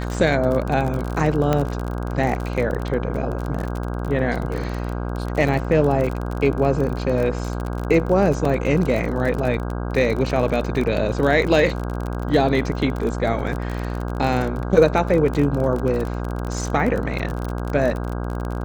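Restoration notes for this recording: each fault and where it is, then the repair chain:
buzz 60 Hz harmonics 27 -26 dBFS
crackle 36/s -24 dBFS
1.53 pop -7 dBFS
8.45 gap 3.2 ms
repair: de-click; de-hum 60 Hz, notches 27; interpolate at 8.45, 3.2 ms

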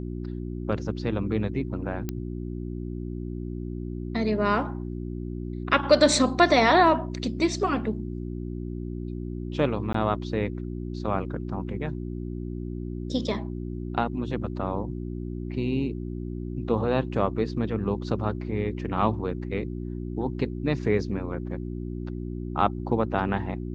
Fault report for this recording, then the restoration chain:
hum 60 Hz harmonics 6 -33 dBFS
2.09 pop -16 dBFS
9.93–9.94 gap 14 ms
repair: de-click; de-hum 60 Hz, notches 6; interpolate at 9.93, 14 ms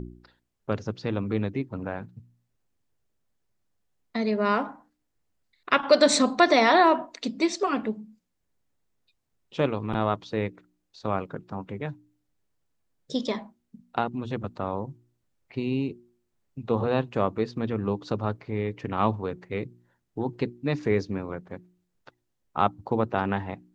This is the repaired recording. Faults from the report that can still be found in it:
none

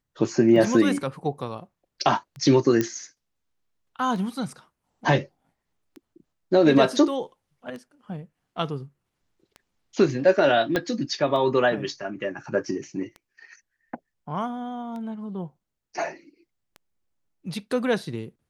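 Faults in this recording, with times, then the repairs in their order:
tick 33 1/3 rpm -26 dBFS
2.81 pop -10 dBFS
10.76 pop -10 dBFS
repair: de-click

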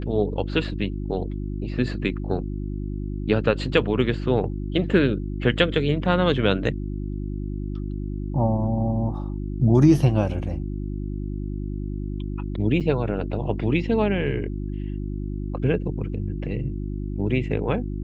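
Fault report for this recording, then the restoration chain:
hum 50 Hz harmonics 7 -29 dBFS
12.8–12.81 gap 7.6 ms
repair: de-hum 50 Hz, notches 7; interpolate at 12.8, 7.6 ms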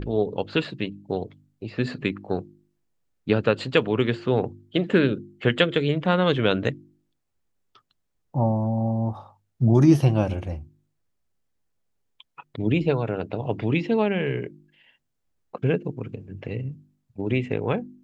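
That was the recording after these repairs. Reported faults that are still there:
none

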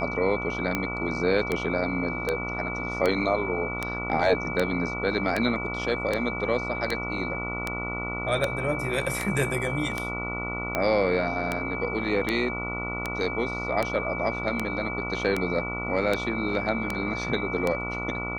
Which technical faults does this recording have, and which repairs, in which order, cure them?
buzz 60 Hz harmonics 24 -34 dBFS
tick 78 rpm -11 dBFS
tone 2300 Hz -32 dBFS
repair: de-click; de-hum 60 Hz, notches 24; notch 2300 Hz, Q 30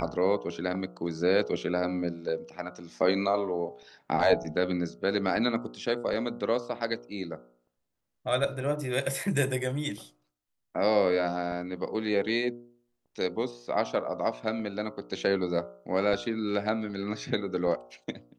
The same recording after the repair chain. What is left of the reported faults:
none

